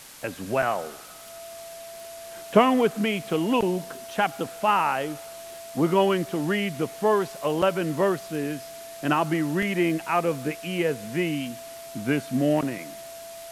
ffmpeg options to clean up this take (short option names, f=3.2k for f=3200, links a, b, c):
-af "adeclick=t=4,bandreject=f=670:w=30,afftdn=nr=29:nf=-41"